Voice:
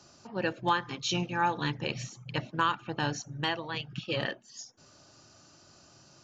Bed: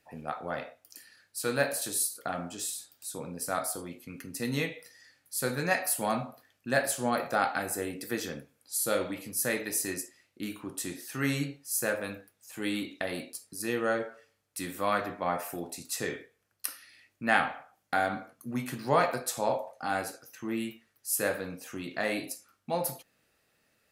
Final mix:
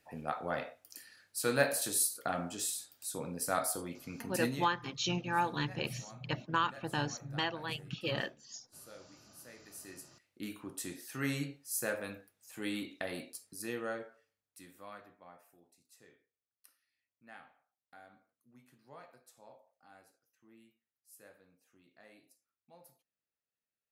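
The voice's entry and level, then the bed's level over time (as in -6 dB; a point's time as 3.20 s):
3.95 s, -3.5 dB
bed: 4.46 s -1 dB
4.75 s -24.5 dB
9.54 s -24.5 dB
10.36 s -5.5 dB
13.50 s -5.5 dB
15.56 s -28.5 dB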